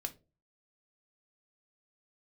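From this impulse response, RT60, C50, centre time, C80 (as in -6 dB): 0.30 s, 18.0 dB, 5 ms, 25.0 dB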